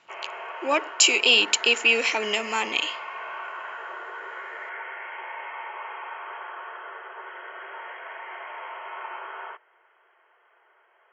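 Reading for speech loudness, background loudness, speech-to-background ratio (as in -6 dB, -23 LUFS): -20.5 LUFS, -36.5 LUFS, 16.0 dB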